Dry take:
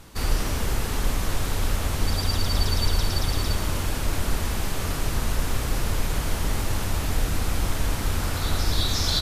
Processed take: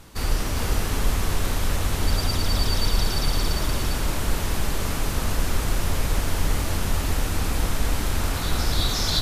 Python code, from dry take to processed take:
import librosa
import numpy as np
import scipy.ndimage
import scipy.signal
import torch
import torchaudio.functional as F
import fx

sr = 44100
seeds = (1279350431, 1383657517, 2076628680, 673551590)

y = x + 10.0 ** (-4.0 / 20.0) * np.pad(x, (int(404 * sr / 1000.0), 0))[:len(x)]